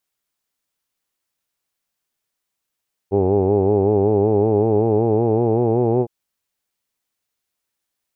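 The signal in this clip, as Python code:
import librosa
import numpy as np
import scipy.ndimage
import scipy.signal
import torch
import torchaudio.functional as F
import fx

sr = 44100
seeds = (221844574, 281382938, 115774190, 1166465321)

y = fx.formant_vowel(sr, seeds[0], length_s=2.96, hz=95.6, glide_st=4.0, vibrato_hz=5.3, vibrato_st=0.9, f1_hz=410.0, f2_hz=810.0, f3_hz=2500.0)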